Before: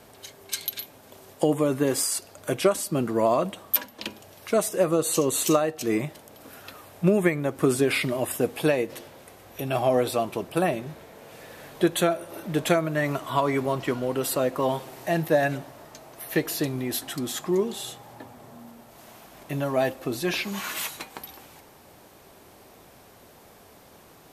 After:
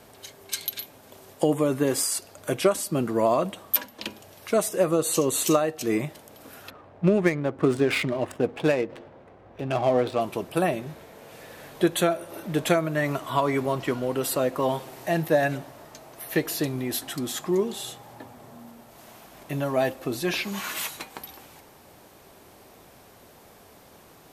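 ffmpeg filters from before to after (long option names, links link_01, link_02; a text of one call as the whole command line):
ffmpeg -i in.wav -filter_complex "[0:a]asettb=1/sr,asplit=3[link_01][link_02][link_03];[link_01]atrim=end=6.704[link_04];[link_02]atrim=start=6.7:end=10.21,asetpts=PTS-STARTPTS,afade=type=in:duration=0.004:curve=qsin,afade=type=out:start_time=3.506:duration=0.004:curve=qsin,adynamicsmooth=sensitivity=5:basefreq=1300[link_05];[link_03]atrim=start=10.206[link_06];[link_04][link_05]acrossfade=duration=0.004:curve1=hsin:curve2=qsin[link_07];[link_07][link_06]acrossfade=duration=0.004:curve1=qsin:curve2=hsin" out.wav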